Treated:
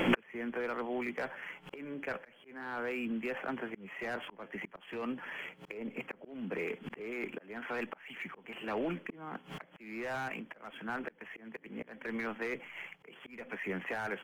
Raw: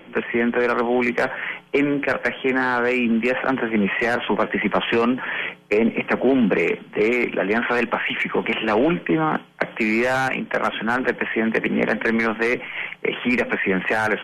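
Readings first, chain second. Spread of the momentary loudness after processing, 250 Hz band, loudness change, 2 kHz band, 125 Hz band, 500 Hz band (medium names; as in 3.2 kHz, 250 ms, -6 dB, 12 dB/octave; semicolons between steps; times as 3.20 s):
10 LU, -18.5 dB, -18.5 dB, -18.0 dB, -17.5 dB, -19.0 dB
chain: median filter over 5 samples; inverted gate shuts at -26 dBFS, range -31 dB; slow attack 360 ms; trim +14.5 dB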